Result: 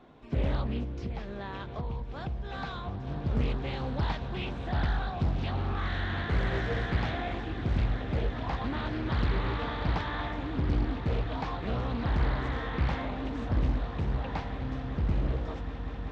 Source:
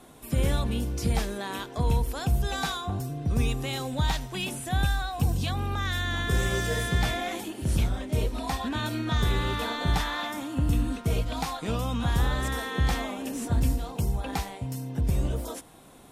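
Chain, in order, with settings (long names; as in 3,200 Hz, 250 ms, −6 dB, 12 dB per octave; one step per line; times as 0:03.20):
Gaussian smoothing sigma 2.3 samples
echo that builds up and dies away 191 ms, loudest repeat 8, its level −17.5 dB
0:00.83–0:03.07: downward compressor 4 to 1, threshold −29 dBFS, peak gain reduction 9 dB
highs frequency-modulated by the lows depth 0.86 ms
level −3.5 dB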